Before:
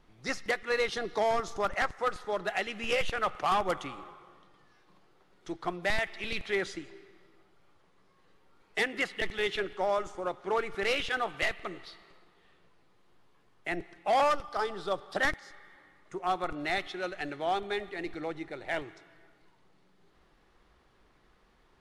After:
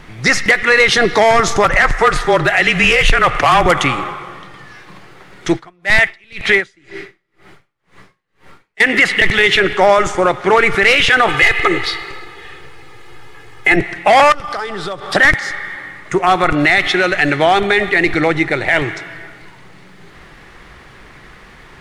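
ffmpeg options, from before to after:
ffmpeg -i in.wav -filter_complex "[0:a]asettb=1/sr,asplit=3[link_01][link_02][link_03];[link_01]atrim=end=1.644[link_04];[link_02]atrim=start=1.64:end=3.66,asetpts=PTS-STARTPTS,afade=type=in:duration=0.004:curve=qsin,afade=type=out:start_time=2.016:duration=0.004:curve=qsin,afreqshift=-29[link_05];[link_03]atrim=start=3.656[link_06];[link_04][link_05]acrossfade=duration=0.004:curve1=hsin:curve2=qsin[link_07];[link_07][link_06]acrossfade=duration=0.004:curve1=qsin:curve2=hsin,asplit=3[link_08][link_09][link_10];[link_08]afade=type=out:start_time=5.58:duration=0.02[link_11];[link_09]aeval=exprs='val(0)*pow(10,-38*(0.5-0.5*cos(2*PI*2*n/s))/20)':channel_layout=same,afade=type=in:start_time=5.58:duration=0.02,afade=type=out:start_time=8.8:duration=0.02[link_12];[link_10]afade=type=in:start_time=8.8:duration=0.02[link_13];[link_11][link_12][link_13]amix=inputs=3:normalize=0,asettb=1/sr,asplit=3[link_14][link_15][link_16];[link_14]atrim=end=11.284[link_17];[link_15]atrim=start=11.28:end=13.76,asetpts=PTS-STARTPTS,afade=type=in:duration=0.004:curve=qsin,afade=type=out:start_time=2.476:duration=0.004:curve=qsin,aecho=1:1:2.4:0.99,atrim=end_sample=109368[link_18];[link_16]atrim=start=13.756[link_19];[link_17][link_18]acrossfade=duration=0.004:curve1=hsin:curve2=qsin[link_20];[link_20][link_19]acrossfade=duration=0.004:curve1=qsin:curve2=hsin,asettb=1/sr,asplit=3[link_21][link_22][link_23];[link_21]atrim=end=14.324[link_24];[link_22]atrim=start=14.32:end=15.1,asetpts=PTS-STARTPTS,afade=type=in:duration=0.004:curve=qsin,afade=type=out:start_time=0.776:duration=0.004:curve=qsin,acompressor=threshold=-44dB:ratio=8:attack=3.2:release=140:knee=1:detection=peak[link_25];[link_23]atrim=start=15.096[link_26];[link_24][link_25]acrossfade=duration=0.004:curve1=hsin:curve2=qsin[link_27];[link_27][link_26]acrossfade=duration=0.004:curve1=qsin:curve2=hsin,equalizer=frequency=125:width_type=o:width=1:gain=7,equalizer=frequency=2000:width_type=o:width=1:gain=9,equalizer=frequency=8000:width_type=o:width=1:gain=4,alimiter=level_in=23dB:limit=-1dB:release=50:level=0:latency=1,volume=-1dB" out.wav

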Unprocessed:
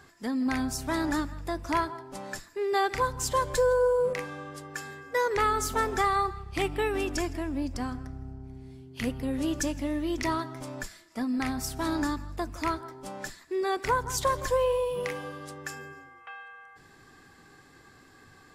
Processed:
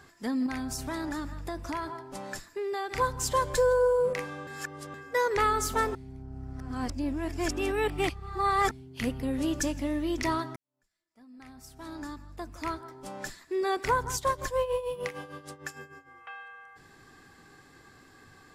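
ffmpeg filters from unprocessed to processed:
ffmpeg -i in.wav -filter_complex "[0:a]asettb=1/sr,asplit=3[link_01][link_02][link_03];[link_01]atrim=end=0.464[link_04];[link_02]atrim=start=0.46:end=2.96,asetpts=PTS-STARTPTS,afade=type=in:duration=0.004:curve=qsin,afade=type=out:start_time=2.496:duration=0.004:curve=qsin,acompressor=threshold=-30dB:ratio=6:attack=3.2:release=140:knee=1:detection=peak[link_05];[link_03]atrim=start=2.956[link_06];[link_04][link_05]acrossfade=duration=0.004:curve1=hsin:curve2=qsin[link_07];[link_07][link_06]acrossfade=duration=0.004:curve1=qsin:curve2=hsin,asettb=1/sr,asplit=3[link_08][link_09][link_10];[link_08]atrim=end=14.144[link_11];[link_09]atrim=start=14.14:end=16.14,asetpts=PTS-STARTPTS,afade=type=in:duration=0.004:curve=qsin,afade=type=out:start_time=1.996:duration=0.004:curve=qsin,tremolo=f=6.6:d=0.76[link_12];[link_10]atrim=start=16.136[link_13];[link_11][link_12]acrossfade=duration=0.004:curve1=hsin:curve2=qsin[link_14];[link_14][link_13]acrossfade=duration=0.004:curve1=qsin:curve2=hsin,asplit=6[link_15][link_16][link_17][link_18][link_19][link_20];[link_15]atrim=end=4.472[link_21];[link_16]atrim=start=4.468:end=4.942,asetpts=PTS-STARTPTS,areverse[link_22];[link_17]atrim=start=4.938:end=5.952[link_23];[link_18]atrim=start=5.948:end=8.712,asetpts=PTS-STARTPTS,areverse[link_24];[link_19]atrim=start=8.708:end=10.56,asetpts=PTS-STARTPTS,afade=type=out:start_time=1.848:duration=0.004:curve=hsin[link_25];[link_20]atrim=start=10.56,asetpts=PTS-STARTPTS,afade=type=in:duration=2.73:curve=qua[link_26];[link_21][link_22]acrossfade=duration=0.004:curve1=hsin:curve2=hsin[link_27];[link_27][link_23]acrossfade=duration=0.004:curve1=hsin:curve2=hsin[link_28];[link_28][link_24]acrossfade=duration=0.004:curve1=hsin:curve2=hsin[link_29];[link_25][link_26]concat=n=2:v=0:a=1[link_30];[link_29][link_30]acrossfade=duration=0.004:curve1=hsin:curve2=hsin" out.wav

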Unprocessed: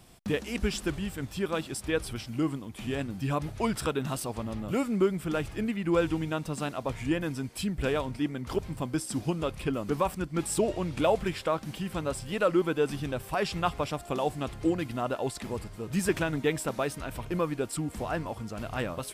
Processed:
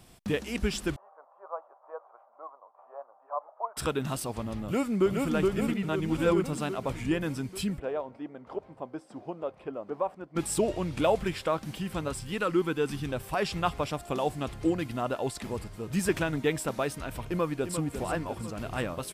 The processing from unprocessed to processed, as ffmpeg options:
ffmpeg -i in.wav -filter_complex "[0:a]asettb=1/sr,asplit=3[link_01][link_02][link_03];[link_01]atrim=end=0.964[link_04];[link_02]atrim=start=0.96:end=3.77,asetpts=PTS-STARTPTS,afade=type=in:duration=0.004:curve=qsin,afade=type=out:start_time=2.806:duration=0.004:curve=qsin,asuperpass=centerf=820:order=8:qfactor=1.3[link_05];[link_03]atrim=start=3.766[link_06];[link_04][link_05]acrossfade=duration=0.004:curve1=hsin:curve2=qsin[link_07];[link_07][link_06]acrossfade=duration=0.004:curve1=qsin:curve2=hsin,asplit=2[link_08][link_09];[link_09]afade=type=in:start_time=4.63:duration=0.01,afade=type=out:start_time=5.31:duration=0.01,aecho=0:1:420|840|1260|1680|2100|2520|2940|3360|3780|4200|4620:0.794328|0.516313|0.335604|0.218142|0.141793|0.0921652|0.0599074|0.0389398|0.0253109|0.0164521|0.0106938[link_10];[link_08][link_10]amix=inputs=2:normalize=0,asplit=3[link_11][link_12][link_13];[link_11]afade=type=out:start_time=7.78:duration=0.02[link_14];[link_12]bandpass=frequency=650:width_type=q:width=1.6,afade=type=in:start_time=7.78:duration=0.02,afade=type=out:start_time=10.35:duration=0.02[link_15];[link_13]afade=type=in:start_time=10.35:duration=0.02[link_16];[link_14][link_15][link_16]amix=inputs=3:normalize=0,asettb=1/sr,asplit=3[link_17][link_18][link_19];[link_17]atrim=end=12.084[link_20];[link_18]atrim=start=12.08:end=13.09,asetpts=PTS-STARTPTS,afade=type=in:duration=0.004:curve=qsin,afade=type=out:start_time=1.006:duration=0.004:curve=qsin,equalizer=frequency=610:width=3.2:gain=-10.5[link_21];[link_19]atrim=start=13.086[link_22];[link_20][link_21]acrossfade=duration=0.004:curve1=hsin:curve2=qsin[link_23];[link_23][link_22]acrossfade=duration=0.004:curve1=qsin:curve2=hsin,asplit=2[link_24][link_25];[link_25]afade=type=in:start_time=17.27:duration=0.01,afade=type=out:start_time=17.8:duration=0.01,aecho=0:1:350|700|1050|1400|1750|2100|2450|2800:0.375837|0.225502|0.135301|0.0811809|0.0487085|0.0292251|0.0175351|0.010521[link_26];[link_24][link_26]amix=inputs=2:normalize=0,asplit=3[link_27][link_28][link_29];[link_27]atrim=end=5.832[link_30];[link_28]atrim=start=5.828:end=6.442,asetpts=PTS-STARTPTS,areverse[link_31];[link_29]atrim=start=6.438[link_32];[link_30][link_31]acrossfade=duration=0.004:curve1=hsin:curve2=hsin[link_33];[link_33][link_32]acrossfade=duration=0.004:curve1=hsin:curve2=hsin" out.wav

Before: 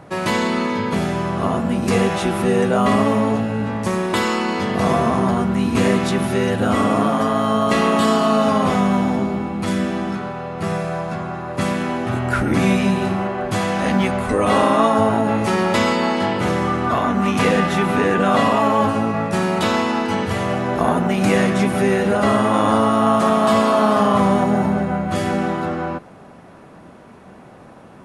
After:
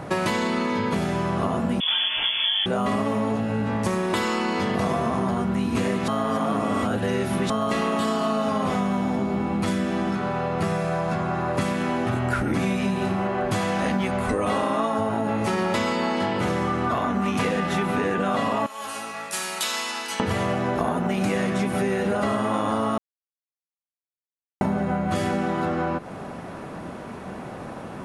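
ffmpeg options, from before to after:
ffmpeg -i in.wav -filter_complex "[0:a]asettb=1/sr,asplit=3[link_01][link_02][link_03];[link_01]atrim=end=1.804[link_04];[link_02]atrim=start=1.8:end=2.66,asetpts=PTS-STARTPTS,afade=type=in:duration=0.004:curve=qsin,afade=type=out:start_time=0.856:duration=0.004:curve=qsin,lowpass=frequency=3100:width_type=q:width=0.5098,lowpass=frequency=3100:width_type=q:width=0.6013,lowpass=frequency=3100:width_type=q:width=0.9,lowpass=frequency=3100:width_type=q:width=2.563,afreqshift=-3600[link_05];[link_03]atrim=start=2.656[link_06];[link_04][link_05]acrossfade=duration=0.004:curve1=hsin:curve2=qsin[link_07];[link_07][link_06]acrossfade=duration=0.004:curve1=qsin:curve2=hsin,asettb=1/sr,asplit=3[link_08][link_09][link_10];[link_08]atrim=end=18.664[link_11];[link_09]atrim=start=18.66:end=20.2,asetpts=PTS-STARTPTS,afade=type=in:duration=0.004:curve=qsin,afade=type=out:start_time=1.536:duration=0.004:curve=qsin,aderivative[link_12];[link_10]atrim=start=20.196[link_13];[link_11][link_12]acrossfade=duration=0.004:curve1=hsin:curve2=qsin[link_14];[link_14][link_13]acrossfade=duration=0.004:curve1=qsin:curve2=hsin,asplit=5[link_15][link_16][link_17][link_18][link_19];[link_15]atrim=end=6.082[link_20];[link_16]atrim=start=6.078:end=7.502,asetpts=PTS-STARTPTS,areverse[link_21];[link_17]atrim=start=7.498:end=22.98,asetpts=PTS-STARTPTS,afade=type=out:start_time=15.478:duration=0.004:curve=hsin[link_22];[link_18]atrim=start=22.98:end=24.61,asetpts=PTS-STARTPTS,volume=0[link_23];[link_19]atrim=start=24.61,asetpts=PTS-STARTPTS,afade=type=in:duration=0.004:curve=hsin[link_24];[link_20][link_21]acrossfade=duration=0.004:curve1=hsin:curve2=hsin[link_25];[link_22][link_23][link_24]concat=n=3:v=0:a=1[link_26];[link_25][link_26]acrossfade=duration=0.004:curve1=hsin:curve2=hsin,acompressor=threshold=-29dB:ratio=6,volume=7dB" out.wav

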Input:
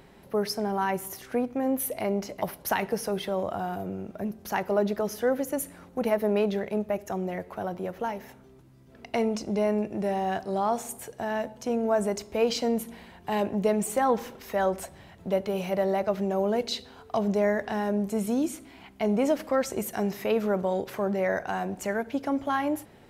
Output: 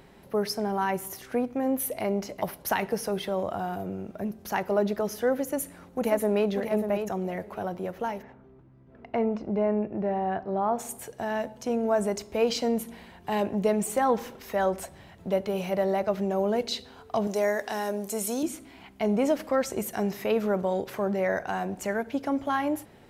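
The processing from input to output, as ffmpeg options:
ffmpeg -i in.wav -filter_complex "[0:a]asplit=2[link_01][link_02];[link_02]afade=type=in:start_time=5.44:duration=0.01,afade=type=out:start_time=6.49:duration=0.01,aecho=0:1:590|1180|1770:0.446684|0.0670025|0.0100504[link_03];[link_01][link_03]amix=inputs=2:normalize=0,asplit=3[link_04][link_05][link_06];[link_04]afade=type=out:start_time=8.21:duration=0.02[link_07];[link_05]lowpass=1700,afade=type=in:start_time=8.21:duration=0.02,afade=type=out:start_time=10.78:duration=0.02[link_08];[link_06]afade=type=in:start_time=10.78:duration=0.02[link_09];[link_07][link_08][link_09]amix=inputs=3:normalize=0,asettb=1/sr,asplit=3[link_10][link_11][link_12];[link_10]atrim=end=17.274[link_13];[link_11]atrim=start=17.27:end=18.43,asetpts=PTS-STARTPTS,afade=type=in:duration=0.004:curve=qsin,afade=type=out:start_time=1.156:duration=0.004:curve=qsin,bass=frequency=250:gain=-12,treble=frequency=4000:gain=11[link_14];[link_12]atrim=start=18.426[link_15];[link_13][link_14]acrossfade=duration=0.004:curve1=hsin:curve2=qsin[link_16];[link_16][link_15]acrossfade=duration=0.004:curve1=qsin:curve2=hsin" out.wav

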